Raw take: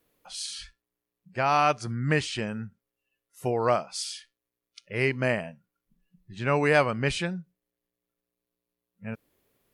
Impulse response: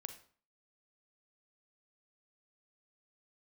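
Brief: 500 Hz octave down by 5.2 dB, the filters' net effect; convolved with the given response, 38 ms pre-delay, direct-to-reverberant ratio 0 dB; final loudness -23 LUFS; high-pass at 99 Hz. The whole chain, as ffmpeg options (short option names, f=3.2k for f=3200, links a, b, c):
-filter_complex "[0:a]highpass=99,equalizer=f=500:t=o:g=-6.5,asplit=2[a][b];[1:a]atrim=start_sample=2205,adelay=38[c];[b][c]afir=irnorm=-1:irlink=0,volume=4dB[d];[a][d]amix=inputs=2:normalize=0,volume=3.5dB"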